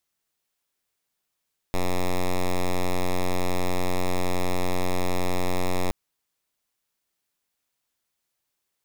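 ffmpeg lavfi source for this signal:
-f lavfi -i "aevalsrc='0.0794*(2*lt(mod(90.6*t,1),0.06)-1)':d=4.17:s=44100"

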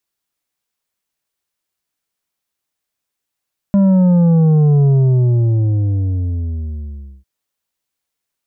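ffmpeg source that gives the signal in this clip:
-f lavfi -i "aevalsrc='0.355*clip((3.5-t)/2.4,0,1)*tanh(2.24*sin(2*PI*200*3.5/log(65/200)*(exp(log(65/200)*t/3.5)-1)))/tanh(2.24)':d=3.5:s=44100"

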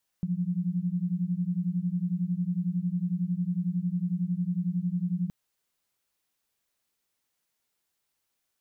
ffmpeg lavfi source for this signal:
-f lavfi -i "aevalsrc='0.0355*(sin(2*PI*172*t)+sin(2*PI*183*t))':d=5.07:s=44100"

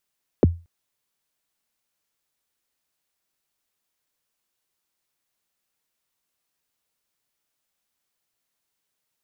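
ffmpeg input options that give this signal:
-f lavfi -i "aevalsrc='0.398*pow(10,-3*t/0.29)*sin(2*PI*(570*0.021/log(85/570)*(exp(log(85/570)*min(t,0.021)/0.021)-1)+85*max(t-0.021,0)))':d=0.23:s=44100"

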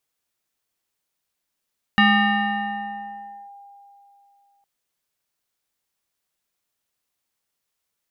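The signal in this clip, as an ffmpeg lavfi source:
-f lavfi -i "aevalsrc='0.282*pow(10,-3*t/3.15)*sin(2*PI*803*t+1.8*clip(1-t/1.52,0,1)*sin(2*PI*1.26*803*t))':d=2.66:s=44100"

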